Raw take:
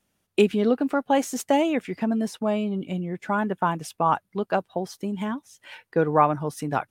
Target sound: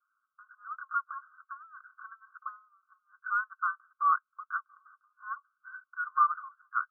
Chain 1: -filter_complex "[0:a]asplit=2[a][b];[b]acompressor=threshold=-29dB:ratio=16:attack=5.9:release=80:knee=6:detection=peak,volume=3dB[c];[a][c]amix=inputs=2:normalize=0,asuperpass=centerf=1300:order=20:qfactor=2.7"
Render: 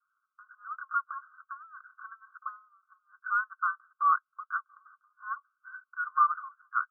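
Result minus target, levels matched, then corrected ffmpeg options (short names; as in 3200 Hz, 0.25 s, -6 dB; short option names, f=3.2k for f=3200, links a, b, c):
compressor: peak gain reduction -6 dB
-filter_complex "[0:a]asplit=2[a][b];[b]acompressor=threshold=-35.5dB:ratio=16:attack=5.9:release=80:knee=6:detection=peak,volume=3dB[c];[a][c]amix=inputs=2:normalize=0,asuperpass=centerf=1300:order=20:qfactor=2.7"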